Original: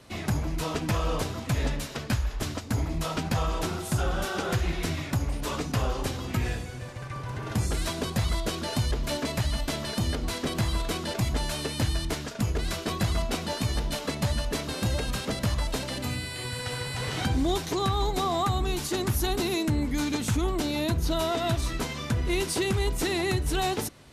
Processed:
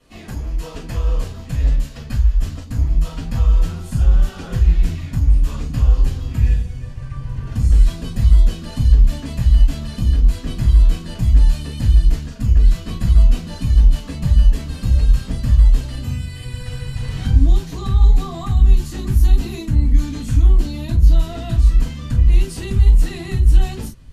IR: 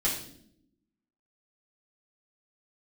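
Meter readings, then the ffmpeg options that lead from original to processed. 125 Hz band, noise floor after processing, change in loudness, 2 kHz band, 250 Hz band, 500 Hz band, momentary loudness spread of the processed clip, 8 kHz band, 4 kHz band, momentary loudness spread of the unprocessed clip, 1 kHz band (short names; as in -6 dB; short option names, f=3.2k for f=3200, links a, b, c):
+12.0 dB, -33 dBFS, +11.0 dB, -4.5 dB, +2.0 dB, -5.0 dB, 11 LU, -4.0 dB, -4.0 dB, 5 LU, -6.0 dB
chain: -filter_complex "[0:a]asubboost=boost=7.5:cutoff=150[a];[1:a]atrim=start_sample=2205,atrim=end_sample=3969,asetrate=61740,aresample=44100[b];[a][b]afir=irnorm=-1:irlink=0,volume=-9dB"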